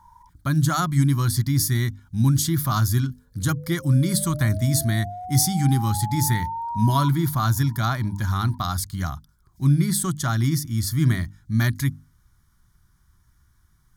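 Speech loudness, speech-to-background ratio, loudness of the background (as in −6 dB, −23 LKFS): −22.5 LKFS, 11.0 dB, −33.5 LKFS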